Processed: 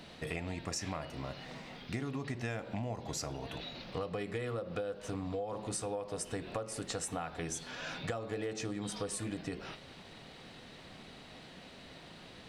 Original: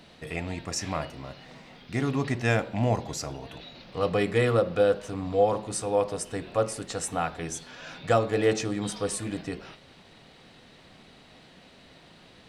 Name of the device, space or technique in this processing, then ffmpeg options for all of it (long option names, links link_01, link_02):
serial compression, leveller first: -af "acompressor=threshold=-26dB:ratio=3,acompressor=threshold=-36dB:ratio=6,volume=1dB"